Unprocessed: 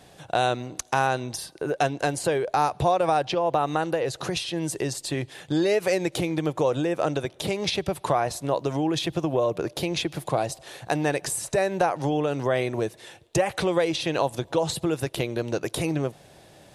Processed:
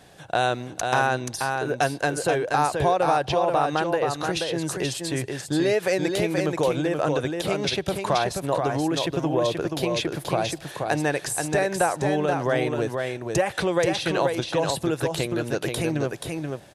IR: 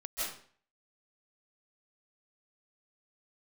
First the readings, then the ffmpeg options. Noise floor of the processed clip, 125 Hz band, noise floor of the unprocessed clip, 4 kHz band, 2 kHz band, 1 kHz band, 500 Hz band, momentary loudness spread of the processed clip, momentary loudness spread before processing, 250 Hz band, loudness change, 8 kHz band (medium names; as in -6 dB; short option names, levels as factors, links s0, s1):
-42 dBFS, +1.5 dB, -53 dBFS, +1.5 dB, +4.0 dB, +1.5 dB, +1.5 dB, 5 LU, 6 LU, +1.5 dB, +1.5 dB, +1.5 dB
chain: -af "equalizer=f=1600:t=o:w=0.36:g=4.5,aecho=1:1:480:0.596"